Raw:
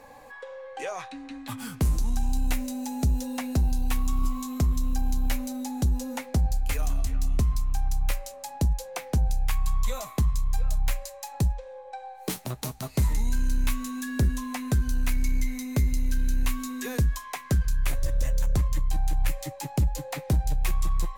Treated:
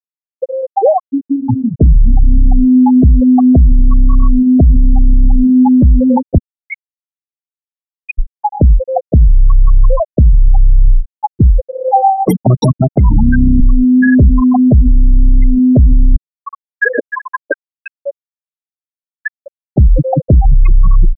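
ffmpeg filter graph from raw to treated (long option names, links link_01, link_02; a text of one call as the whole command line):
ffmpeg -i in.wav -filter_complex "[0:a]asettb=1/sr,asplit=3[link_01][link_02][link_03];[link_01]atrim=end=1.384[link_04];[link_02]atrim=start=1.38:end=2.45,asetpts=PTS-STARTPTS,afade=type=in:duration=0.004:curve=qsin,afade=type=out:start_time=1.066:duration=0.004:curve=qsin,highshelf=frequency=8000:gain=-11,asoftclip=type=hard:threshold=-20.5dB,asplit=2[link_05][link_06];[link_06]adelay=48,volume=-11dB[link_07];[link_05][link_07]amix=inputs=2:normalize=0,atrim=end_sample=47187[link_08];[link_03]atrim=start=2.446[link_09];[link_04][link_08]acrossfade=duration=0.004:curve1=hsin:curve2=qsin[link_10];[link_10][link_09]acrossfade=duration=0.004:curve1=qsin:curve2=hsin,asettb=1/sr,asplit=3[link_11][link_12][link_13];[link_11]atrim=end=6.384[link_14];[link_12]atrim=start=6.38:end=8.19,asetpts=PTS-STARTPTS,afade=type=in:duration=0.004:curve=qsin,afade=type=out:start_time=1.806:duration=0.004:curve=qsin,highpass=frequency=1100:width=0.5412,highpass=frequency=1100:width=1.3066,aecho=1:1:7.3:0.55,atrim=end_sample=79821[link_15];[link_13]atrim=start=8.186[link_16];[link_14][link_15]acrossfade=duration=0.004:curve1=hsin:curve2=qsin[link_17];[link_17][link_16]acrossfade=duration=0.004:curve1=qsin:curve2=hsin,asettb=1/sr,asplit=3[link_18][link_19][link_20];[link_18]atrim=end=11.814[link_21];[link_19]atrim=start=11.81:end=13.61,asetpts=PTS-STARTPTS,afade=type=in:duration=0.004:curve=qsin,afade=type=out:start_time=1.796:duration=0.004:curve=qsin,highpass=71,acontrast=70[link_22];[link_20]atrim=start=13.606[link_23];[link_21][link_22]acrossfade=duration=0.004:curve1=hsin:curve2=qsin[link_24];[link_24][link_23]acrossfade=duration=0.004:curve1=qsin:curve2=hsin,asettb=1/sr,asplit=3[link_25][link_26][link_27];[link_25]atrim=end=16.164[link_28];[link_26]atrim=start=16.16:end=19.76,asetpts=PTS-STARTPTS,afade=type=in:duration=0.004:curve=qsin,afade=type=out:start_time=3.596:duration=0.004:curve=qsin,highpass=frequency=340:width=0.5412,highpass=frequency=340:width=1.3066,equalizer=frequency=380:width_type=q:width=4:gain=-5,equalizer=frequency=780:width_type=q:width=4:gain=-10,equalizer=frequency=1600:width_type=q:width=4:gain=5,equalizer=frequency=4900:width_type=q:width=4:gain=-8,lowpass=frequency=7400:width=0.5412,lowpass=frequency=7400:width=1.3066,aecho=1:1:58|89|173|453|758:0.316|0.168|0.266|0.188|0.133,atrim=end_sample=158760[link_29];[link_27]atrim=start=19.756[link_30];[link_28][link_29]acrossfade=duration=0.004:curve1=hsin:curve2=qsin[link_31];[link_31][link_30]acrossfade=duration=0.004:curve1=qsin:curve2=hsin,afftfilt=real='re*gte(hypot(re,im),0.112)':imag='im*gte(hypot(re,im),0.112)':win_size=1024:overlap=0.75,alimiter=level_in=28dB:limit=-1dB:release=50:level=0:latency=1,volume=-1dB" out.wav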